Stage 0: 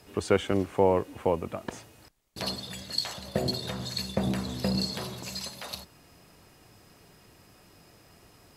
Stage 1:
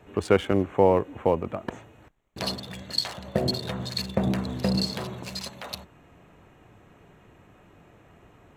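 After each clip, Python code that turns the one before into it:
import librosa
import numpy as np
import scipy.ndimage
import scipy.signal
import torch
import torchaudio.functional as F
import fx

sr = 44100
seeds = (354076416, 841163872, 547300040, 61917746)

y = fx.wiener(x, sr, points=9)
y = F.gain(torch.from_numpy(y), 3.5).numpy()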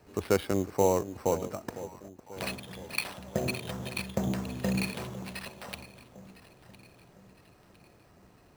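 y = fx.echo_alternate(x, sr, ms=504, hz=830.0, feedback_pct=66, wet_db=-13.5)
y = fx.sample_hold(y, sr, seeds[0], rate_hz=6800.0, jitter_pct=0)
y = F.gain(torch.from_numpy(y), -5.5).numpy()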